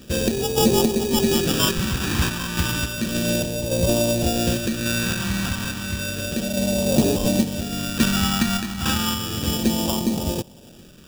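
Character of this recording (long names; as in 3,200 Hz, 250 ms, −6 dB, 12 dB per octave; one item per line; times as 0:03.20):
aliases and images of a low sample rate 2,100 Hz, jitter 0%
phaser sweep stages 2, 0.32 Hz, lowest notch 520–1,400 Hz
sample-and-hold tremolo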